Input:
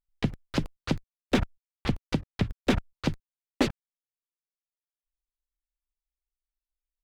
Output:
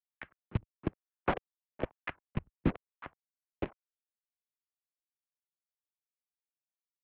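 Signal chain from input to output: Doppler pass-by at 1.6, 19 m/s, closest 14 m; wah 1.1 Hz 230–1800 Hz, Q 2.3; in parallel at +2 dB: requantised 6-bit, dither none; on the sum: mistuned SSB -200 Hz 260–3100 Hz

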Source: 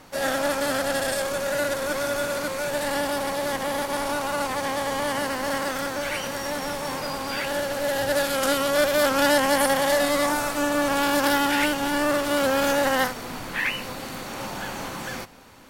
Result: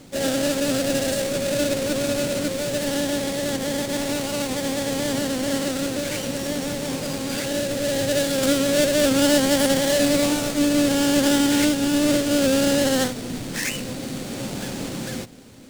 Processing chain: half-waves squared off; ten-band EQ 125 Hz +7 dB, 250 Hz +7 dB, 500 Hz +4 dB, 1000 Hz -8 dB, 4000 Hz +4 dB, 8000 Hz +7 dB; gain -6 dB

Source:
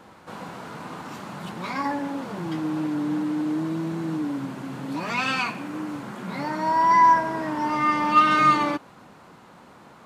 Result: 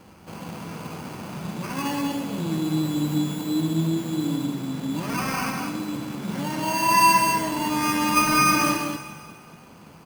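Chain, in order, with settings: low shelf 280 Hz +10.5 dB; sample-rate reducer 3700 Hz, jitter 0%; echo 0.193 s -4 dB; on a send at -7 dB: reverb RT60 2.1 s, pre-delay 8 ms; on the sum: gain -4.5 dB

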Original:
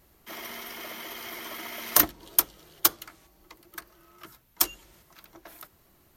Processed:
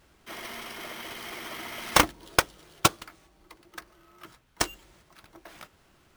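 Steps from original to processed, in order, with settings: 3.05–5.38 high shelf 7800 Hz -5.5 dB; careless resampling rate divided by 3×, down none, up hold

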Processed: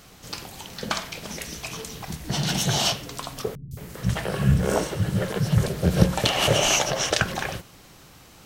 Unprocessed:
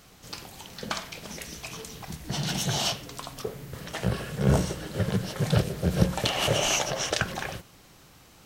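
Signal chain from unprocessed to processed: 3.55–5.68 three bands offset in time lows, highs, mids 0.16/0.22 s, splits 240/4300 Hz; gain +4.5 dB

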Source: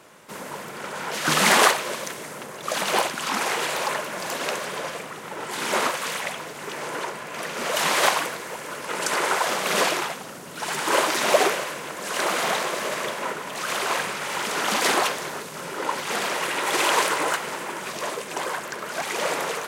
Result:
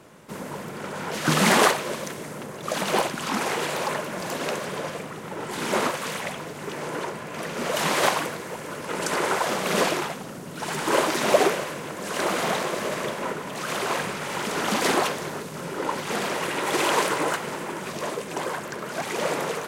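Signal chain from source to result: low shelf 400 Hz +12 dB; gain -3.5 dB

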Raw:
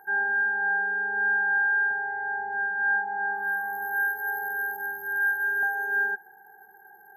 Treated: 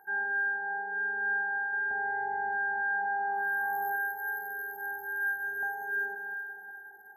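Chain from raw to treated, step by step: echo with dull and thin repeats by turns 0.187 s, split 1200 Hz, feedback 61%, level -6 dB; 1.73–3.96 fast leveller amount 70%; gain -6 dB

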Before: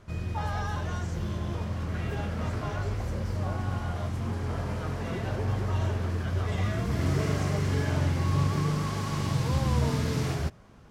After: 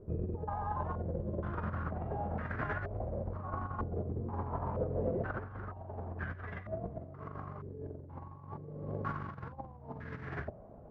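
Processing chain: negative-ratio compressor -33 dBFS, ratio -0.5; stepped low-pass 2.1 Hz 440–1700 Hz; gain -6.5 dB

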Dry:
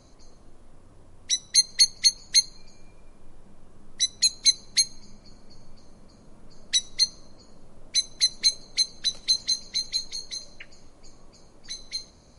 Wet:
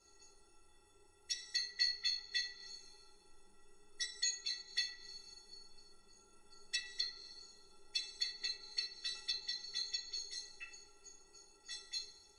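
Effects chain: tilt +2 dB/oct; metallic resonator 400 Hz, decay 0.25 s, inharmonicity 0.03; two-slope reverb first 0.29 s, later 1.5 s, from -20 dB, DRR -5 dB; treble ducked by the level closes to 2600 Hz, closed at -33 dBFS; gain +2 dB

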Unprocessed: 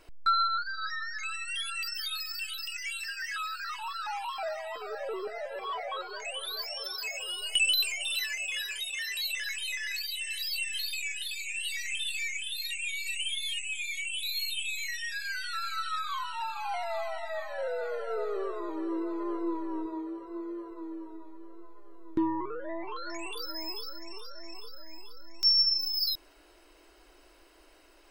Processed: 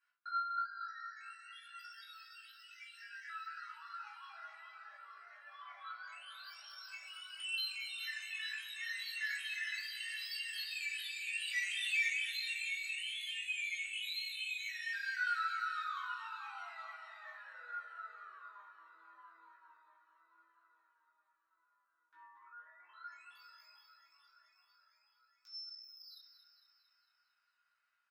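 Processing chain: Doppler pass-by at 11.95, 7 m/s, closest 3.6 m; vocal rider within 4 dB 0.5 s; ladder high-pass 1300 Hz, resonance 70%; doubler 19 ms -3 dB; feedback echo 0.227 s, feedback 57%, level -10.5 dB; reverb RT60 0.50 s, pre-delay 3 ms, DRR -6.5 dB; gain +1 dB

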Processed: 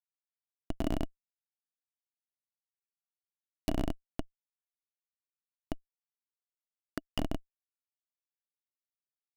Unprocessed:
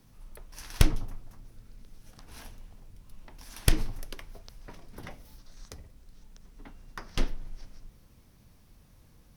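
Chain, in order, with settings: Schmitt trigger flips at -28 dBFS; compressor, threshold -37 dBFS, peak gain reduction 6 dB; small resonant body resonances 290/650/2900 Hz, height 14 dB, ringing for 30 ms; limiter -25.5 dBFS, peak gain reduction 4.5 dB; gain +7.5 dB

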